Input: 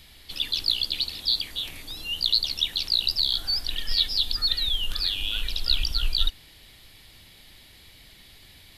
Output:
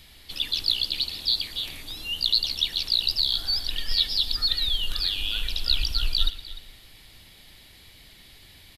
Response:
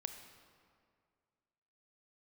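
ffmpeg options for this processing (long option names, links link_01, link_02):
-filter_complex "[0:a]aecho=1:1:300:0.141,asplit=2[link_01][link_02];[1:a]atrim=start_sample=2205,adelay=116[link_03];[link_02][link_03]afir=irnorm=-1:irlink=0,volume=-13dB[link_04];[link_01][link_04]amix=inputs=2:normalize=0"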